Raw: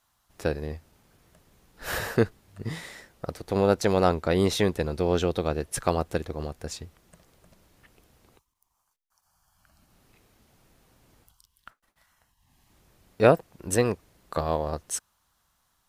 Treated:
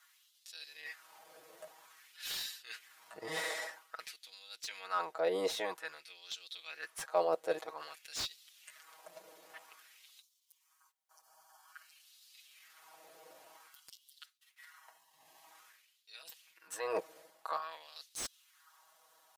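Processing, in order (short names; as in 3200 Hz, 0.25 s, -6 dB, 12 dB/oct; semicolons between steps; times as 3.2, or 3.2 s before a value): comb 6.3 ms, depth 84%; reverse; compressor 6:1, threshold -34 dBFS, peak gain reduction 22.5 dB; reverse; tempo 0.82×; LFO high-pass sine 0.51 Hz 520–4000 Hz; slew limiter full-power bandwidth 62 Hz; gain +2 dB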